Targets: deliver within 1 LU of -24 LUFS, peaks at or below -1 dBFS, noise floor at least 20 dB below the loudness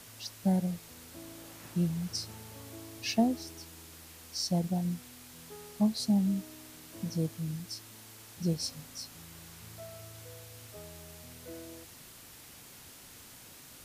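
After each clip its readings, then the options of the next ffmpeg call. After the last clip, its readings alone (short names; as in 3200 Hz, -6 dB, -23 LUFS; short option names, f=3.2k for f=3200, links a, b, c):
noise floor -52 dBFS; noise floor target -54 dBFS; loudness -33.5 LUFS; peak -15.5 dBFS; loudness target -24.0 LUFS
-> -af "afftdn=nr=6:nf=-52"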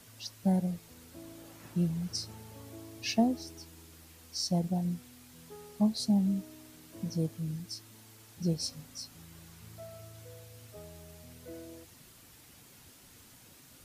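noise floor -57 dBFS; loudness -33.0 LUFS; peak -15.5 dBFS; loudness target -24.0 LUFS
-> -af "volume=9dB"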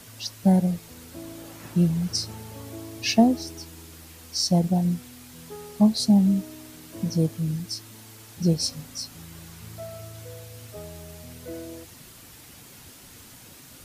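loudness -24.0 LUFS; peak -6.5 dBFS; noise floor -48 dBFS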